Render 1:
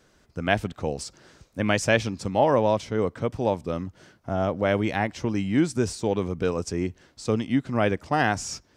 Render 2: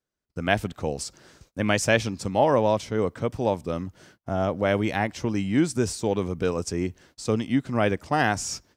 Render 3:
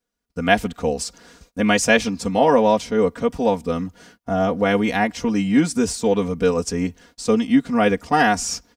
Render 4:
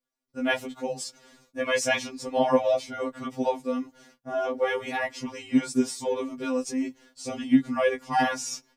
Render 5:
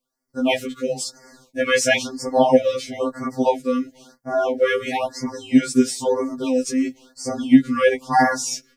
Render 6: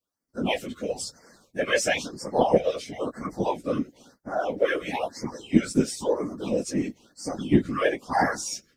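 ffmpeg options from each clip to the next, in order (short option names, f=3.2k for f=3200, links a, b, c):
-af "agate=range=-28dB:threshold=-54dB:ratio=16:detection=peak,highshelf=f=9.8k:g=9.5"
-af "aecho=1:1:4.2:0.92,volume=3dB"
-af "afftfilt=real='re*2.45*eq(mod(b,6),0)':imag='im*2.45*eq(mod(b,6),0)':win_size=2048:overlap=0.75,volume=-5dB"
-af "afftfilt=real='re*(1-between(b*sr/1024,740*pow(3200/740,0.5+0.5*sin(2*PI*1*pts/sr))/1.41,740*pow(3200/740,0.5+0.5*sin(2*PI*1*pts/sr))*1.41))':imag='im*(1-between(b*sr/1024,740*pow(3200/740,0.5+0.5*sin(2*PI*1*pts/sr))/1.41,740*pow(3200/740,0.5+0.5*sin(2*PI*1*pts/sr))*1.41))':win_size=1024:overlap=0.75,volume=7.5dB"
-af "bandreject=f=46.32:t=h:w=4,bandreject=f=92.64:t=h:w=4,bandreject=f=138.96:t=h:w=4,bandreject=f=185.28:t=h:w=4,bandreject=f=231.6:t=h:w=4,afftfilt=real='hypot(re,im)*cos(2*PI*random(0))':imag='hypot(re,im)*sin(2*PI*random(1))':win_size=512:overlap=0.75"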